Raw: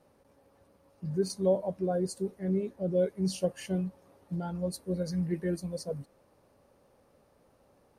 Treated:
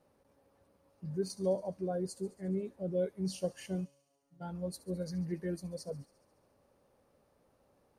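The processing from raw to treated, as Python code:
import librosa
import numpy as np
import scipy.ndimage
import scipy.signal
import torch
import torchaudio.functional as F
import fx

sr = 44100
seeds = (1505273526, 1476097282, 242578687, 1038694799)

y = fx.comb_fb(x, sr, f0_hz=140.0, decay_s=0.65, harmonics='all', damping=0.0, mix_pct=100, at=(3.84, 4.4), fade=0.02)
y = fx.echo_wet_highpass(y, sr, ms=70, feedback_pct=71, hz=4500.0, wet_db=-15.5)
y = F.gain(torch.from_numpy(y), -5.5).numpy()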